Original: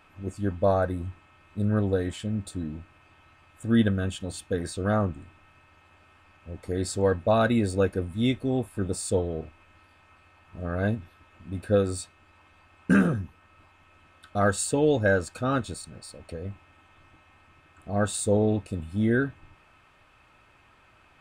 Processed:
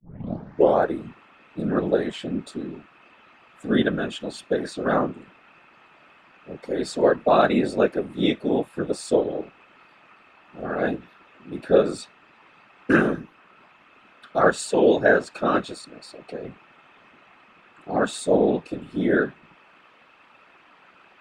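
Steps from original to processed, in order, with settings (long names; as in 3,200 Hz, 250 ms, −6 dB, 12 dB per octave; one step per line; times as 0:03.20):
turntable start at the beginning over 0.82 s
random phases in short frames
three-way crossover with the lows and the highs turned down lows −22 dB, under 200 Hz, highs −14 dB, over 5,400 Hz
level +5.5 dB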